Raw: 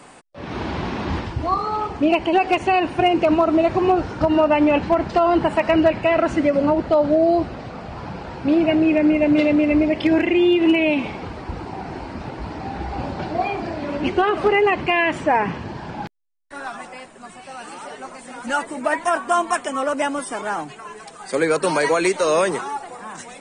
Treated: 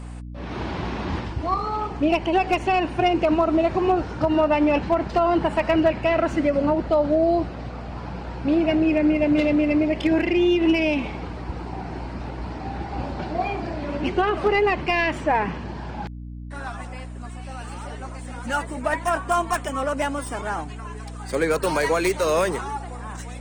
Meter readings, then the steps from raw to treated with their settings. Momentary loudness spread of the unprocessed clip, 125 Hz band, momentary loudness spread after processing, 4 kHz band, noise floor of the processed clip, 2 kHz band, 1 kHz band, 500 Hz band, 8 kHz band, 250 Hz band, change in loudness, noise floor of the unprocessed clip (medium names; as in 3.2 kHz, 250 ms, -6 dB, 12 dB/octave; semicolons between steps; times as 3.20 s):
17 LU, +1.0 dB, 15 LU, -3.0 dB, -35 dBFS, -3.0 dB, -3.0 dB, -3.0 dB, no reading, -3.0 dB, -3.5 dB, -42 dBFS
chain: tracing distortion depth 0.046 ms; hum 60 Hz, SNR 12 dB; trim -3 dB